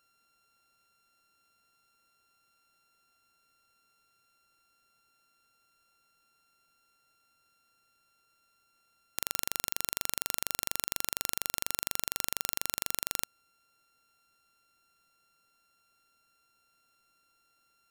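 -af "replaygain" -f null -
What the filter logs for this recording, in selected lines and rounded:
track_gain = +22.7 dB
track_peak = 0.520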